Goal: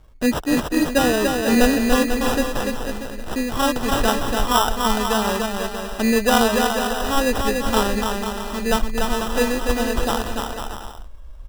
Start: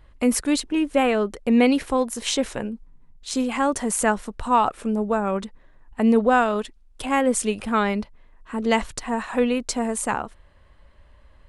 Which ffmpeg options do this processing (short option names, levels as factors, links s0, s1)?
-af "acrusher=samples=20:mix=1:aa=0.000001,aecho=1:1:290|493|635.1|734.6|804.2:0.631|0.398|0.251|0.158|0.1,asubboost=boost=5:cutoff=67,volume=1.12"